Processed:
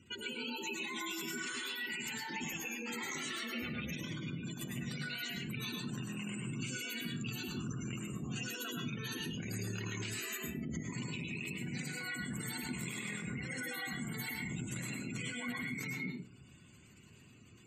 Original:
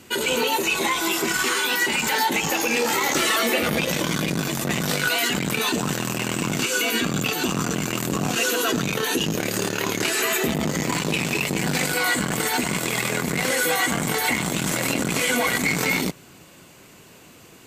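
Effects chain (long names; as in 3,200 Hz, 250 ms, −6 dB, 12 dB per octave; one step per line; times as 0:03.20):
gate on every frequency bin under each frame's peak −15 dB strong
guitar amp tone stack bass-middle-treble 6-0-2
downward compressor, threshold −46 dBFS, peak gain reduction 8.5 dB
convolution reverb RT60 0.35 s, pre-delay 100 ms, DRR 0.5 dB
level +6 dB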